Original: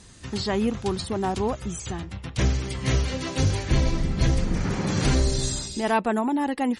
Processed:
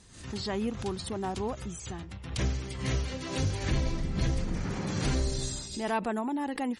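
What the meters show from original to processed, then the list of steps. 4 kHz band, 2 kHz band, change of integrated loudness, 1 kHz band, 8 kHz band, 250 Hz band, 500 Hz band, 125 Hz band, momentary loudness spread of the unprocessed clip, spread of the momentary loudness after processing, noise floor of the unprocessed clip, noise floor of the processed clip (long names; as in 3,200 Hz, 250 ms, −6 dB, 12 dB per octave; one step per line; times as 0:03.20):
−6.5 dB, −6.5 dB, −7.0 dB, −7.5 dB, −6.5 dB, −7.0 dB, −7.0 dB, −7.0 dB, 8 LU, 7 LU, −42 dBFS, −44 dBFS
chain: background raised ahead of every attack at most 91 dB per second
level −7.5 dB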